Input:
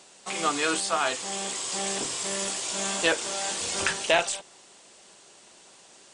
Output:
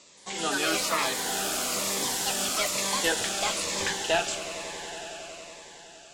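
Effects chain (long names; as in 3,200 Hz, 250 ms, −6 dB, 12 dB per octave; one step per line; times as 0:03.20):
variable-slope delta modulation 64 kbit/s
elliptic low-pass filter 7,600 Hz, stop band 40 dB
delay with pitch and tempo change per echo 173 ms, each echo +4 semitones, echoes 3
echo that builds up and dies away 92 ms, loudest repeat 5, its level −16 dB
phaser whose notches keep moving one way falling 1.1 Hz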